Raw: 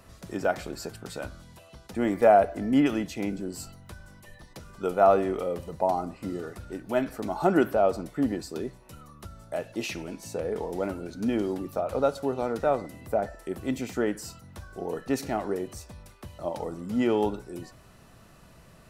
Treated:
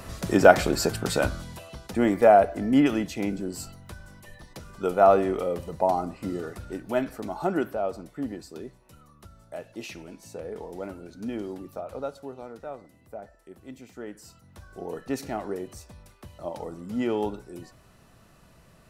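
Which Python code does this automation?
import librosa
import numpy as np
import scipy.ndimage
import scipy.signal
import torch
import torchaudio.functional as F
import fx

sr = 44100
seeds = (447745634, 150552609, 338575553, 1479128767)

y = fx.gain(x, sr, db=fx.line((1.26, 12.0), (2.24, 2.0), (6.73, 2.0), (7.77, -6.0), (11.7, -6.0), (12.67, -13.5), (13.92, -13.5), (14.75, -2.5)))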